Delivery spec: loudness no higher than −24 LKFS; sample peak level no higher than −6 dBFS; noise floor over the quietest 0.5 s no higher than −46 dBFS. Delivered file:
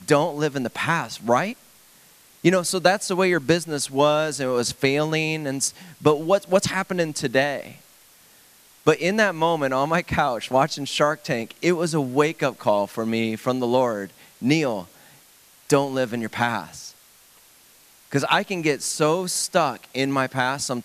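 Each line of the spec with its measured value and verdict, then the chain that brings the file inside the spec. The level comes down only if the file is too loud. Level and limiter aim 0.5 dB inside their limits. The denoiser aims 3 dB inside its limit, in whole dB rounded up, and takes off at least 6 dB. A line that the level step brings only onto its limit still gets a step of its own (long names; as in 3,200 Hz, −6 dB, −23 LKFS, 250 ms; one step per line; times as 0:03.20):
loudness −22.5 LKFS: out of spec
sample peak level −2.5 dBFS: out of spec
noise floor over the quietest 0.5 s −53 dBFS: in spec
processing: level −2 dB
brickwall limiter −6.5 dBFS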